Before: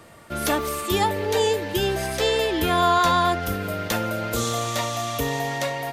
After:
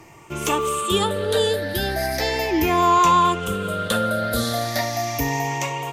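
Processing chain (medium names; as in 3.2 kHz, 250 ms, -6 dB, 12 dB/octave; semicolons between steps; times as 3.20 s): drifting ripple filter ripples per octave 0.72, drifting +0.37 Hz, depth 13 dB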